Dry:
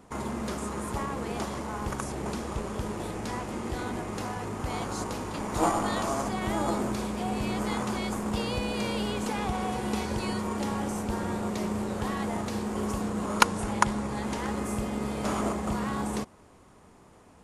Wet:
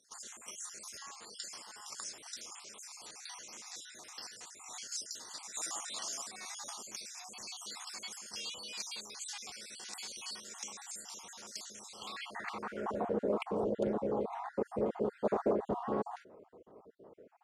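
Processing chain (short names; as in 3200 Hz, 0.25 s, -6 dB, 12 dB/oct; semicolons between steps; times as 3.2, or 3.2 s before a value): random spectral dropouts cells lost 48%; band-pass sweep 5900 Hz -> 480 Hz, 11.87–13.17; Doppler distortion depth 0.14 ms; gain +7.5 dB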